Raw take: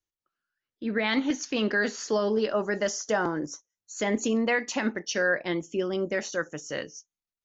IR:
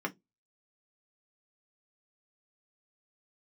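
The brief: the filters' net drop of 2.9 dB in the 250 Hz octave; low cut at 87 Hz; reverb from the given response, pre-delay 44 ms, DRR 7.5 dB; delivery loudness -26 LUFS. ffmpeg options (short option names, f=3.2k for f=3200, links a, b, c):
-filter_complex "[0:a]highpass=87,equalizer=f=250:t=o:g=-3.5,asplit=2[a][b];[1:a]atrim=start_sample=2205,adelay=44[c];[b][c]afir=irnorm=-1:irlink=0,volume=-12.5dB[d];[a][d]amix=inputs=2:normalize=0,volume=2dB"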